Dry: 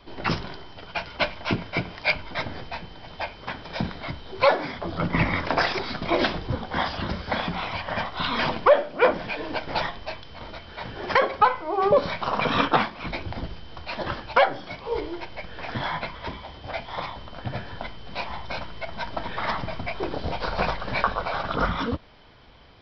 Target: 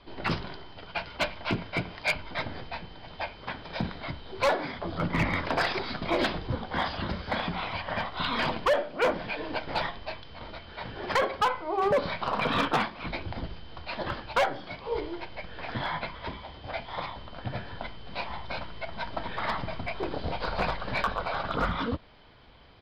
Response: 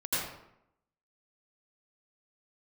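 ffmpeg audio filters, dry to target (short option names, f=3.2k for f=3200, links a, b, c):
-af "aresample=11025,aresample=44100,acontrast=36,volume=11dB,asoftclip=hard,volume=-11dB,volume=-8.5dB"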